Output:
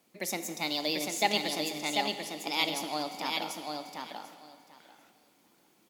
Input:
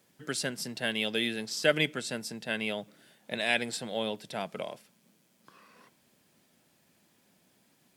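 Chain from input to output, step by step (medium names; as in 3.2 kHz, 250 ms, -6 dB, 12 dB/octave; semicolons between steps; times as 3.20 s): on a send: feedback delay 1001 ms, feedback 15%, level -4 dB; on the sum: plate-style reverb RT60 3.1 s, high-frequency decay 0.95×, DRR 9 dB; speed mistake 33 rpm record played at 45 rpm; trim -1.5 dB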